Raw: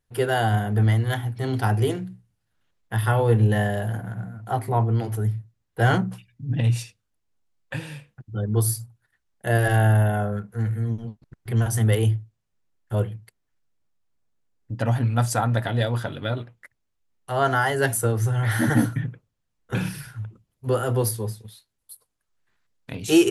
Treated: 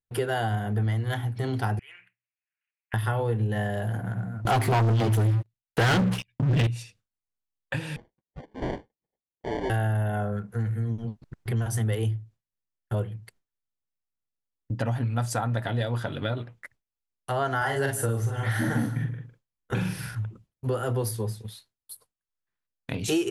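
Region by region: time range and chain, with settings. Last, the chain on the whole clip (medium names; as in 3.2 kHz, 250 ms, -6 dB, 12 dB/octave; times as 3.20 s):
1.79–2.94 s: FFT filter 120 Hz 0 dB, 210 Hz -25 dB, 680 Hz -17 dB, 2.5 kHz +15 dB, 3.8 kHz -13 dB, 5.8 kHz -15 dB, 11 kHz +2 dB + compression 2:1, threshold -53 dBFS + band-pass 610–6200 Hz
4.45–6.67 s: peaking EQ 3 kHz +7.5 dB 1.4 oct + waveshaping leveller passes 5
7.96–9.70 s: high-pass 860 Hz 24 dB/octave + sample-rate reducer 1.3 kHz + tape spacing loss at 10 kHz 26 dB
17.57–20.15 s: doubling 44 ms -3.5 dB + delay 154 ms -17.5 dB
whole clip: gate with hold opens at -46 dBFS; treble shelf 11 kHz -7 dB; compression 3:1, threshold -31 dBFS; trim +4 dB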